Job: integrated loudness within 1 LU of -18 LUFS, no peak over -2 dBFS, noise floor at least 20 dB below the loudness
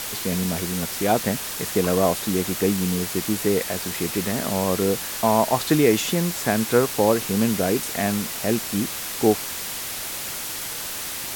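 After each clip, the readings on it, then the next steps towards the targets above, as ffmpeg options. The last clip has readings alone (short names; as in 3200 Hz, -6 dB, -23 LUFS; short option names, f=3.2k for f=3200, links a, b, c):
noise floor -31 dBFS; noise floor target -43 dBFS; loudness -23.0 LUFS; peak -5.0 dBFS; loudness target -18.0 LUFS
-> -af "afftdn=nr=12:nf=-31"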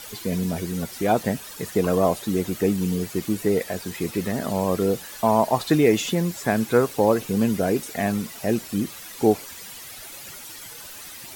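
noise floor -40 dBFS; noise floor target -44 dBFS
-> -af "afftdn=nr=6:nf=-40"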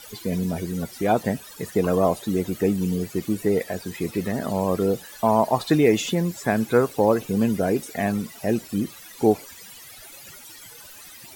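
noise floor -44 dBFS; loudness -23.5 LUFS; peak -5.5 dBFS; loudness target -18.0 LUFS
-> -af "volume=5.5dB,alimiter=limit=-2dB:level=0:latency=1"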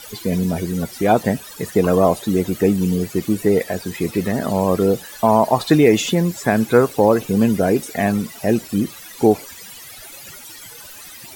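loudness -18.5 LUFS; peak -2.0 dBFS; noise floor -39 dBFS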